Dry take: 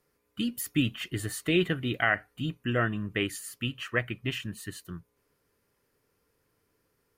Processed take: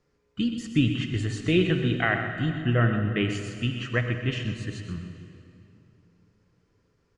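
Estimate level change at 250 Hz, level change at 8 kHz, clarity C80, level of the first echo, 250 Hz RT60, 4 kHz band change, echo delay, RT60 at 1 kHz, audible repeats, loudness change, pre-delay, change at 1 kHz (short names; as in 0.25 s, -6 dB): +5.0 dB, -6.0 dB, 5.5 dB, -10.5 dB, 3.1 s, +1.0 dB, 0.125 s, 2.6 s, 1, +4.0 dB, 39 ms, +2.0 dB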